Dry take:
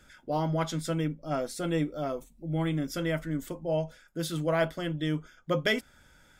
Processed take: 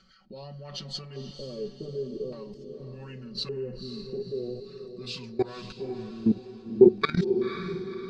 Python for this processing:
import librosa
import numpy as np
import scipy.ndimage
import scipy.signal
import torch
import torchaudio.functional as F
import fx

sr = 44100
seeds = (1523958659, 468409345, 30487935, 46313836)

y = fx.speed_glide(x, sr, from_pct=91, to_pct=67)
y = fx.peak_eq(y, sr, hz=190.0, db=9.5, octaves=0.46)
y = y + 0.99 * np.pad(y, (int(5.3 * sr / 1000.0), 0))[:len(y)]
y = fx.level_steps(y, sr, step_db=21)
y = fx.filter_lfo_lowpass(y, sr, shape='square', hz=0.43, low_hz=430.0, high_hz=4400.0, q=5.4)
y = fx.echo_diffused(y, sr, ms=514, feedback_pct=41, wet_db=-8.5)